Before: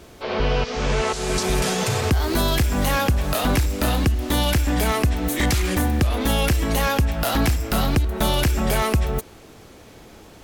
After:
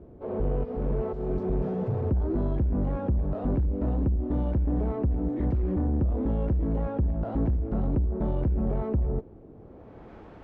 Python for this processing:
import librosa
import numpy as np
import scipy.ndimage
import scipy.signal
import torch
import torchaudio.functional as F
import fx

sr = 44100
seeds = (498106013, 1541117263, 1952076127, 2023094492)

y = 10.0 ** (-19.0 / 20.0) * np.tanh(x / 10.0 ** (-19.0 / 20.0))
y = fx.filter_sweep_lowpass(y, sr, from_hz=450.0, to_hz=1500.0, start_s=9.51, end_s=10.13, q=0.77)
y = fx.cheby_harmonics(y, sr, harmonics=(8,), levels_db=(-30,), full_scale_db=-11.5)
y = F.gain(torch.from_numpy(y), -1.0).numpy()